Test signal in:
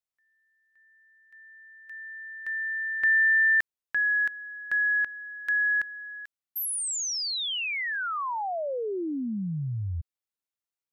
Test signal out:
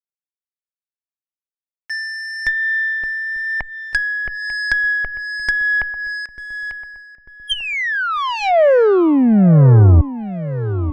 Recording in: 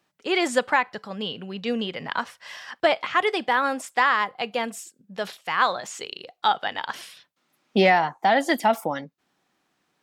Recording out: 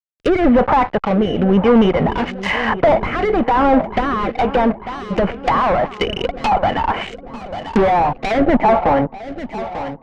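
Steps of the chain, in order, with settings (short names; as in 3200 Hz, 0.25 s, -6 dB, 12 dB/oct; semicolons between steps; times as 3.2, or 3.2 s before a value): rippled Chebyshev low-pass 3100 Hz, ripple 9 dB; fuzz box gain 43 dB, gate -52 dBFS; gate -32 dBFS, range -11 dB; low shelf 75 Hz +11 dB; darkening echo 0.894 s, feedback 63%, low-pass 1200 Hz, level -13 dB; rotary speaker horn 1 Hz; treble ducked by the level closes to 1200 Hz, closed at -16 dBFS; added harmonics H 2 -20 dB, 4 -35 dB, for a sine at -6 dBFS; gain +4.5 dB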